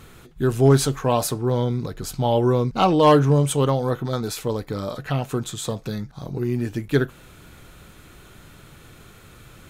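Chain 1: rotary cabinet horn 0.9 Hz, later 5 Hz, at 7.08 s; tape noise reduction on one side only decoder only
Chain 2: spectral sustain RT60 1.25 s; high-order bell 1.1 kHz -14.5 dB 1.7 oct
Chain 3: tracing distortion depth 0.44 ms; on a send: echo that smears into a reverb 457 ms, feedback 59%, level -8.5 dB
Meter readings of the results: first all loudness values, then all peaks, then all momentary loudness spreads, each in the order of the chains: -23.0 LUFS, -20.5 LUFS, -21.0 LUFS; -4.5 dBFS, -5.5 dBFS, -4.5 dBFS; 14 LU, 12 LU, 19 LU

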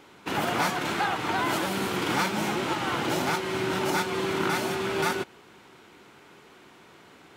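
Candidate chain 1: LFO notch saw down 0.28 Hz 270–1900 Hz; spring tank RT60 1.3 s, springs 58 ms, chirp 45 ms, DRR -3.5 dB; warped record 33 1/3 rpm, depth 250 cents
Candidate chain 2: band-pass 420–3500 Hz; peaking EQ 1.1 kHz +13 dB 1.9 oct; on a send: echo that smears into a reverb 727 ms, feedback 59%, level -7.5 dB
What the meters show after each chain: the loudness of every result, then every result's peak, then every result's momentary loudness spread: -23.5 LUFS, -19.0 LUFS; -9.0 dBFS, -4.5 dBFS; 7 LU, 13 LU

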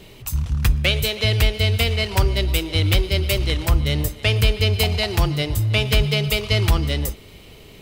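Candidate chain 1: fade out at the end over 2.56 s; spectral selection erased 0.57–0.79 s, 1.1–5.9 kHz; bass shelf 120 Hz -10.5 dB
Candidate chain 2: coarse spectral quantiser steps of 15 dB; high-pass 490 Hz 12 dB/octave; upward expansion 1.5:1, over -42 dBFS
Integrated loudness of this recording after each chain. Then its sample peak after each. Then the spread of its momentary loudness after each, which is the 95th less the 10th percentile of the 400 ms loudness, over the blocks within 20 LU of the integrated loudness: -23.0 LUFS, -26.5 LUFS; -6.0 dBFS, -8.5 dBFS; 9 LU, 10 LU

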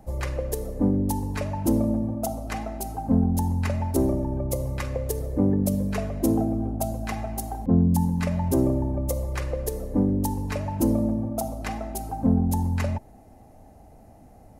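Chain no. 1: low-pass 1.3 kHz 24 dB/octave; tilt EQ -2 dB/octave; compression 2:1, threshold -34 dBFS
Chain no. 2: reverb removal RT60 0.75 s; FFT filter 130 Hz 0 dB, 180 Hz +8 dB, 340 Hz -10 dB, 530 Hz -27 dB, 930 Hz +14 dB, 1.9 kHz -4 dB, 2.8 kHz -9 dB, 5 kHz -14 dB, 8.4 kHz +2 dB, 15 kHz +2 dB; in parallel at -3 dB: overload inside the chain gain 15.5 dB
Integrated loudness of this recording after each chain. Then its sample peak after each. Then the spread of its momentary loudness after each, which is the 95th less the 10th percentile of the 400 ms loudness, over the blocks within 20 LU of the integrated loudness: -31.0 LUFS, -21.5 LUFS; -16.5 dBFS, -4.0 dBFS; 6 LU, 11 LU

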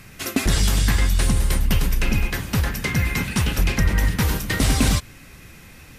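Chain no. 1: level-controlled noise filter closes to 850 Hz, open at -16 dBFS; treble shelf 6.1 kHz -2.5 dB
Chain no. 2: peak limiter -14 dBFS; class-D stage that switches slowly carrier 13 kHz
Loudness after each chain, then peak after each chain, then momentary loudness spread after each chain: -22.0 LUFS, -25.0 LUFS; -8.5 dBFS, -13.5 dBFS; 5 LU, 9 LU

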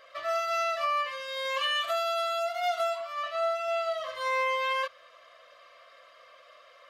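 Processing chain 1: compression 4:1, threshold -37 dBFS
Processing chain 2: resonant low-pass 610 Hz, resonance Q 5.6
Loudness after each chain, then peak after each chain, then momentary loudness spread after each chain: -38.0 LUFS, -23.5 LUFS; -27.0 dBFS, -12.5 dBFS; 17 LU, 8 LU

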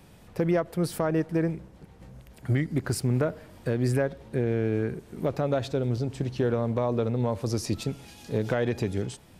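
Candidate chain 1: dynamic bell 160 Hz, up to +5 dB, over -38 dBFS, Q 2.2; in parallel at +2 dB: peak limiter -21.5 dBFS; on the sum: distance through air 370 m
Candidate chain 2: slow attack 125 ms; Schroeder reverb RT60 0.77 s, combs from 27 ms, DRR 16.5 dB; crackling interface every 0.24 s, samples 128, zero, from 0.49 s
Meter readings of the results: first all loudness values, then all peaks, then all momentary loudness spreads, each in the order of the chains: -23.0 LUFS, -30.0 LUFS; -9.0 dBFS, -13.5 dBFS; 8 LU, 13 LU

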